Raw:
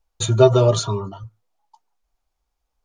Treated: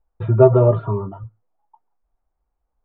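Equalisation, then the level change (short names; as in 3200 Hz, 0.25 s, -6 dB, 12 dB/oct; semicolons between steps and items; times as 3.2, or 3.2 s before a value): Gaussian blur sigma 5.3 samples; +2.0 dB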